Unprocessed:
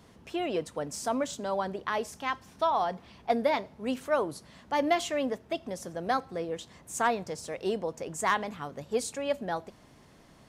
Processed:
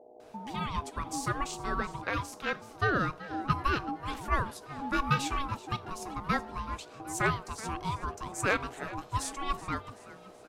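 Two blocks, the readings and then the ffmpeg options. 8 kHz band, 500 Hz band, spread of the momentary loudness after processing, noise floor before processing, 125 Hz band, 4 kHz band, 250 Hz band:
−1.0 dB, −8.5 dB, 10 LU, −57 dBFS, +10.0 dB, −1.0 dB, −2.5 dB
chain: -filter_complex "[0:a]acrossover=split=310[link_01][link_02];[link_02]adelay=200[link_03];[link_01][link_03]amix=inputs=2:normalize=0,aeval=exprs='val(0)+0.00224*(sin(2*PI*60*n/s)+sin(2*PI*2*60*n/s)/2+sin(2*PI*3*60*n/s)/3+sin(2*PI*4*60*n/s)/4+sin(2*PI*5*60*n/s)/5)':channel_layout=same,aeval=exprs='val(0)*sin(2*PI*550*n/s)':channel_layout=same,asplit=2[link_04][link_05];[link_05]asplit=4[link_06][link_07][link_08][link_09];[link_06]adelay=378,afreqshift=82,volume=-17dB[link_10];[link_07]adelay=756,afreqshift=164,volume=-23.4dB[link_11];[link_08]adelay=1134,afreqshift=246,volume=-29.8dB[link_12];[link_09]adelay=1512,afreqshift=328,volume=-36.1dB[link_13];[link_10][link_11][link_12][link_13]amix=inputs=4:normalize=0[link_14];[link_04][link_14]amix=inputs=2:normalize=0,volume=2dB"

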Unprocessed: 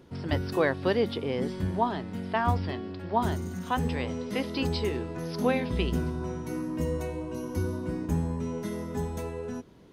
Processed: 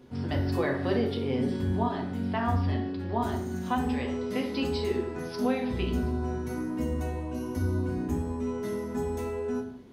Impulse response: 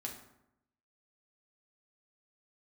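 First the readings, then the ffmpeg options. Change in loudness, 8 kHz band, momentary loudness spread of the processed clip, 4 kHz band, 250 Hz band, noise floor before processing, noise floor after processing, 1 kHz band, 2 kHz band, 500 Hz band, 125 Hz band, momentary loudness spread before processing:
0.0 dB, −2.0 dB, 5 LU, −2.5 dB, +1.5 dB, −40 dBFS, −37 dBFS, −2.0 dB, −2.5 dB, −0.5 dB, +0.5 dB, 8 LU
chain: -filter_complex "[0:a]acompressor=threshold=-31dB:ratio=1.5[link_01];[1:a]atrim=start_sample=2205,afade=type=out:start_time=0.27:duration=0.01,atrim=end_sample=12348[link_02];[link_01][link_02]afir=irnorm=-1:irlink=0,volume=2dB"

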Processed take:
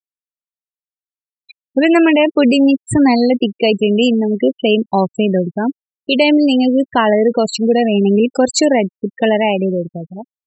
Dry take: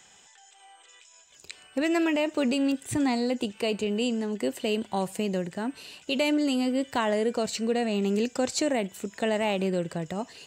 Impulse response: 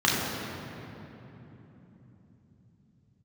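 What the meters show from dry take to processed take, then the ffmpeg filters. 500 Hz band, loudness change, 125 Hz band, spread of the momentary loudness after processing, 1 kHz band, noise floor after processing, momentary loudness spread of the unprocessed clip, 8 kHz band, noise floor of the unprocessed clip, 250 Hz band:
+13.5 dB, +13.5 dB, +13.0 dB, 9 LU, +13.0 dB, below −85 dBFS, 8 LU, +9.5 dB, −56 dBFS, +14.0 dB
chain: -af "dynaudnorm=framelen=260:gausssize=9:maxgain=16dB,afftfilt=real='re*gte(hypot(re,im),0.2)':imag='im*gte(hypot(re,im),0.2)':win_size=1024:overlap=0.75,volume=1dB"

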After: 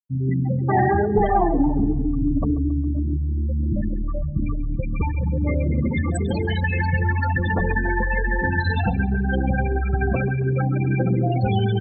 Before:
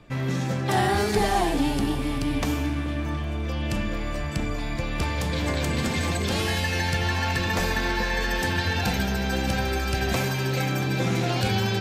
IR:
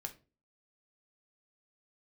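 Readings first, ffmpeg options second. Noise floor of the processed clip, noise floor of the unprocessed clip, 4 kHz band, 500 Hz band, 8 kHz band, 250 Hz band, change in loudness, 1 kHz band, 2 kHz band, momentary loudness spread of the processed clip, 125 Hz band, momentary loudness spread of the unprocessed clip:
−24 dBFS, −28 dBFS, −12.0 dB, +2.5 dB, −13.5 dB, +4.5 dB, +3.5 dB, +2.5 dB, +0.5 dB, 6 LU, +5.5 dB, 6 LU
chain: -filter_complex "[0:a]afftfilt=real='re*gte(hypot(re,im),0.141)':imag='im*gte(hypot(re,im),0.141)':win_size=1024:overlap=0.75,asplit=2[link_01][link_02];[link_02]adelay=136,lowpass=frequency=3300:poles=1,volume=-17dB,asplit=2[link_03][link_04];[link_04]adelay=136,lowpass=frequency=3300:poles=1,volume=0.54,asplit=2[link_05][link_06];[link_06]adelay=136,lowpass=frequency=3300:poles=1,volume=0.54,asplit=2[link_07][link_08];[link_08]adelay=136,lowpass=frequency=3300:poles=1,volume=0.54,asplit=2[link_09][link_10];[link_10]adelay=136,lowpass=frequency=3300:poles=1,volume=0.54[link_11];[link_01][link_03][link_05][link_07][link_09][link_11]amix=inputs=6:normalize=0,acontrast=24"

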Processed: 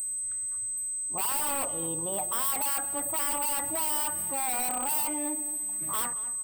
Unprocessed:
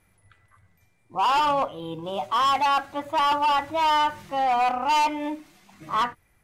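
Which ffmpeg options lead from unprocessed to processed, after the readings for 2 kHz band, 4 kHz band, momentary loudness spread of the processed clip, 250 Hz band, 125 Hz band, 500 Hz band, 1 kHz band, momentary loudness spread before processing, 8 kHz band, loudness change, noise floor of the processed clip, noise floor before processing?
−9.0 dB, −10.5 dB, 4 LU, −5.5 dB, −4.0 dB, −8.0 dB, −14.0 dB, 11 LU, +20.5 dB, −4.0 dB, −33 dBFS, −65 dBFS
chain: -filter_complex "[0:a]aeval=exprs='0.0708*(abs(mod(val(0)/0.0708+3,4)-2)-1)':channel_layout=same,acrossover=split=6200[link_01][link_02];[link_02]acompressor=threshold=-45dB:ratio=4:attack=1:release=60[link_03];[link_01][link_03]amix=inputs=2:normalize=0,alimiter=level_in=2dB:limit=-24dB:level=0:latency=1:release=75,volume=-2dB,equalizer=frequency=5800:width=0.34:gain=-6.5,bandreject=frequency=50:width_type=h:width=6,bandreject=frequency=100:width_type=h:width=6,asplit=2[link_04][link_05];[link_05]adelay=223,lowpass=frequency=1700:poles=1,volume=-13dB,asplit=2[link_06][link_07];[link_07]adelay=223,lowpass=frequency=1700:poles=1,volume=0.37,asplit=2[link_08][link_09];[link_09]adelay=223,lowpass=frequency=1700:poles=1,volume=0.37,asplit=2[link_10][link_11];[link_11]adelay=223,lowpass=frequency=1700:poles=1,volume=0.37[link_12];[link_04][link_06][link_08][link_10][link_12]amix=inputs=5:normalize=0,aeval=exprs='val(0)+0.01*sin(2*PI*8200*n/s)':channel_layout=same,aexciter=amount=12.6:drive=3.9:freq=9700,highshelf=frequency=7600:gain=10.5,volume=-2dB"

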